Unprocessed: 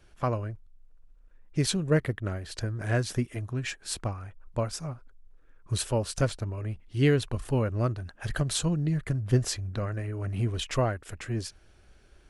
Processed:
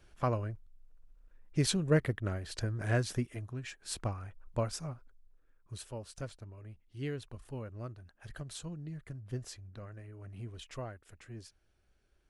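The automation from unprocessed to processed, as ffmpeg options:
-af "volume=4.5dB,afade=t=out:st=2.9:d=0.81:silence=0.398107,afade=t=in:st=3.71:d=0.34:silence=0.421697,afade=t=out:st=4.67:d=1.06:silence=0.251189"

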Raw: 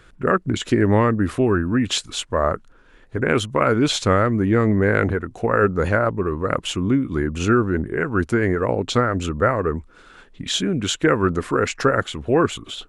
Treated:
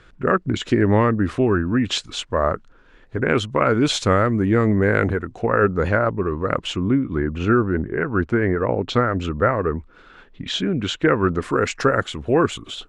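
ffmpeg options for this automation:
-af "asetnsamples=n=441:p=0,asendcmd='3.74 lowpass f 9800;5.31 lowpass f 5300;6.78 lowpass f 2500;8.89 lowpass f 4000;11.42 lowpass f 8900',lowpass=6k"

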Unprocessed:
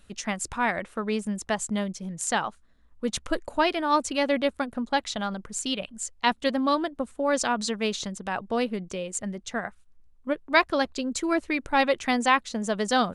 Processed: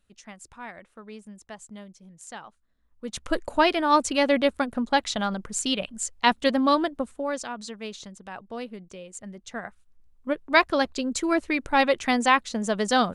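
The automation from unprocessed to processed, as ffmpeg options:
-af "volume=13.5dB,afade=t=in:st=2.47:d=0.64:silence=0.398107,afade=t=in:st=3.11:d=0.29:silence=0.334965,afade=t=out:st=6.86:d=0.56:silence=0.251189,afade=t=in:st=9.18:d=1.32:silence=0.298538"

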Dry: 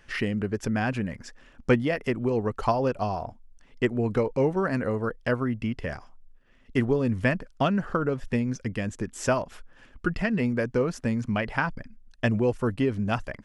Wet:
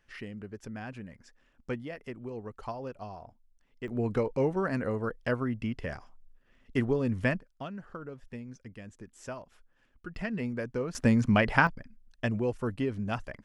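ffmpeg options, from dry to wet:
-af "asetnsamples=n=441:p=0,asendcmd='3.88 volume volume -4dB;7.4 volume volume -16dB;10.15 volume volume -8dB;10.95 volume volume 3.5dB;11.67 volume volume -6dB',volume=-14dB"

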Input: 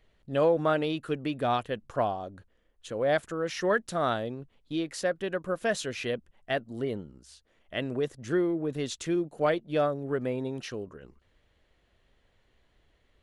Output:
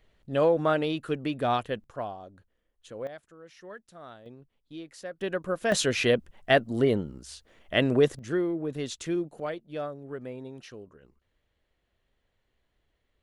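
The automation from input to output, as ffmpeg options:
-af "asetnsamples=n=441:p=0,asendcmd='1.84 volume volume -7dB;3.07 volume volume -18.5dB;4.26 volume volume -10.5dB;5.21 volume volume 1dB;5.72 volume volume 8.5dB;8.19 volume volume -1dB;9.4 volume volume -8dB',volume=1dB"

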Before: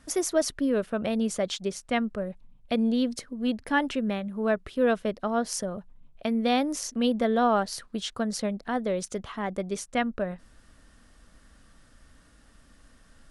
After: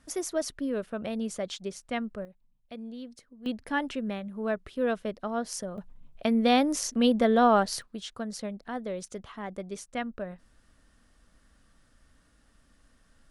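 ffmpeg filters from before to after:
-af "asetnsamples=n=441:p=0,asendcmd='2.25 volume volume -16dB;3.46 volume volume -4.5dB;5.78 volume volume 2dB;7.82 volume volume -6.5dB',volume=-5.5dB"

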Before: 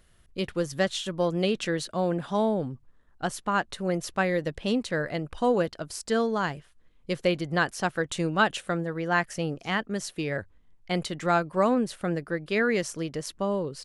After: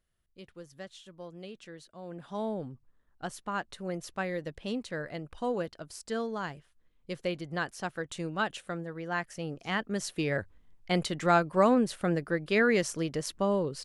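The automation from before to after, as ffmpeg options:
-af "afade=t=in:st=2.01:d=0.5:silence=0.281838,afade=t=in:st=9.38:d=0.82:silence=0.398107"

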